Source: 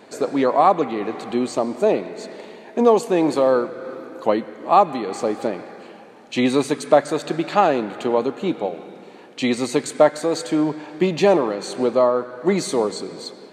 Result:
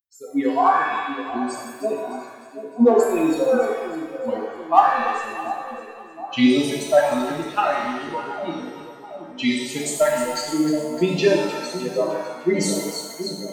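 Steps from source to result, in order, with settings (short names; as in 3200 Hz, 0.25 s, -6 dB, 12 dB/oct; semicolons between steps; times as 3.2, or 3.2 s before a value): per-bin expansion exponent 3; bell 590 Hz -5.5 dB 2.8 oct; in parallel at -3.5 dB: one-sided clip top -17 dBFS; on the sum: split-band echo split 790 Hz, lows 0.727 s, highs 0.305 s, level -10.5 dB; shimmer reverb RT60 1 s, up +7 st, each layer -8 dB, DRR -1.5 dB; gain +1.5 dB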